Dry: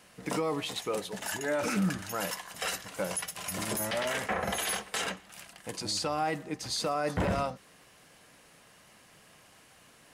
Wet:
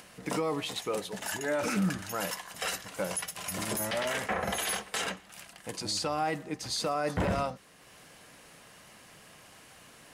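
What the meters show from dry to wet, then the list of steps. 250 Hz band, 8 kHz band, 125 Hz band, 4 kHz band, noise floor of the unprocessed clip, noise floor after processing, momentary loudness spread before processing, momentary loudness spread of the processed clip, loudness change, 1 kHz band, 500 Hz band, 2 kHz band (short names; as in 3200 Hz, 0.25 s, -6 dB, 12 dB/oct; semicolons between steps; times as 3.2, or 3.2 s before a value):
0.0 dB, 0.0 dB, 0.0 dB, 0.0 dB, -59 dBFS, -55 dBFS, 6 LU, 22 LU, 0.0 dB, 0.0 dB, 0.0 dB, 0.0 dB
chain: upward compressor, threshold -47 dBFS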